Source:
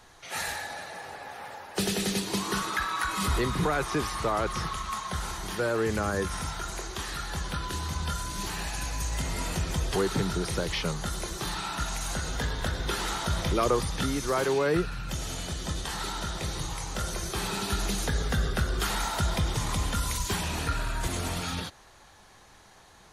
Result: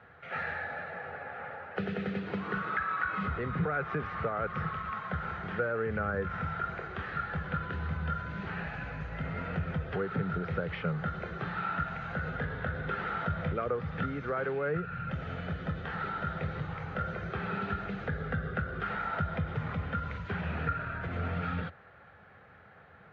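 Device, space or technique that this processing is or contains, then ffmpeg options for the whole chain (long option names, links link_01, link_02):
bass amplifier: -af "acompressor=threshold=-30dB:ratio=5,highpass=frequency=72:width=0.5412,highpass=frequency=72:width=1.3066,equalizer=frequency=86:width_type=q:width=4:gain=4,equalizer=frequency=160:width_type=q:width=4:gain=6,equalizer=frequency=330:width_type=q:width=4:gain=-8,equalizer=frequency=490:width_type=q:width=4:gain=5,equalizer=frequency=980:width_type=q:width=4:gain=-10,equalizer=frequency=1400:width_type=q:width=4:gain=8,lowpass=frequency=2300:width=0.5412,lowpass=frequency=2300:width=1.3066"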